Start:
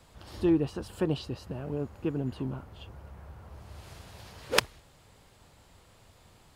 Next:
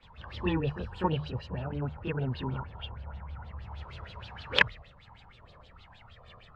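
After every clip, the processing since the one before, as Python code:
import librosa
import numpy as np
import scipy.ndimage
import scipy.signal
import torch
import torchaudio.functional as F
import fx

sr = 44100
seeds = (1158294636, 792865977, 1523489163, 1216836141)

y = fx.chorus_voices(x, sr, voices=6, hz=0.33, base_ms=27, depth_ms=1.2, mix_pct=70)
y = fx.filter_lfo_lowpass(y, sr, shape='sine', hz=6.4, low_hz=970.0, high_hz=3800.0, q=5.3)
y = fx.hum_notches(y, sr, base_hz=50, count=3)
y = y * 10.0 ** (1.5 / 20.0)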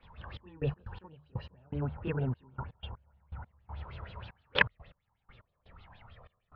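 y = fx.air_absorb(x, sr, metres=270.0)
y = fx.step_gate(y, sr, bpm=122, pattern='xxx..x.x...x..xx', floor_db=-24.0, edge_ms=4.5)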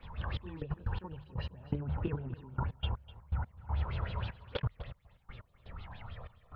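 y = fx.low_shelf(x, sr, hz=200.0, db=5.0)
y = fx.over_compress(y, sr, threshold_db=-34.0, ratio=-0.5)
y = y + 10.0 ** (-17.0 / 20.0) * np.pad(y, (int(251 * sr / 1000.0), 0))[:len(y)]
y = y * 10.0 ** (2.0 / 20.0)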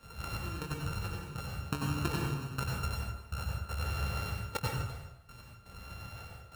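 y = np.r_[np.sort(x[:len(x) // 32 * 32].reshape(-1, 32), axis=1).ravel(), x[len(x) // 32 * 32:]]
y = fx.highpass(y, sr, hz=110.0, slope=6)
y = fx.rev_plate(y, sr, seeds[0], rt60_s=0.77, hf_ratio=0.75, predelay_ms=80, drr_db=-1.5)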